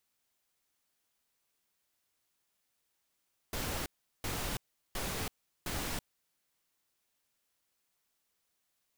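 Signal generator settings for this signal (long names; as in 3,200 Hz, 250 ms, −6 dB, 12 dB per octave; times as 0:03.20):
noise bursts pink, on 0.33 s, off 0.38 s, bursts 4, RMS −36.5 dBFS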